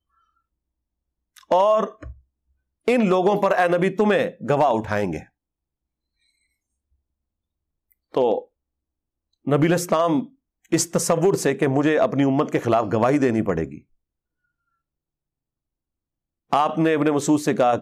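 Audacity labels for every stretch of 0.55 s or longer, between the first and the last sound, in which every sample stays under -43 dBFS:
2.130000	2.870000	silence
5.240000	7.920000	silence
8.440000	9.470000	silence
13.790000	16.520000	silence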